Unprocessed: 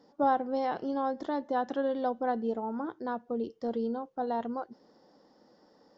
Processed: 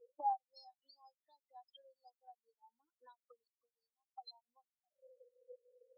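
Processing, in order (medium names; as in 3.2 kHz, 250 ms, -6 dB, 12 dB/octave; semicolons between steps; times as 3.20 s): auto-wah 460–4900 Hz, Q 12, up, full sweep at -28.5 dBFS; 3.60–4.21 s: static phaser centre 590 Hz, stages 6; spectral contrast expander 4:1; trim +17.5 dB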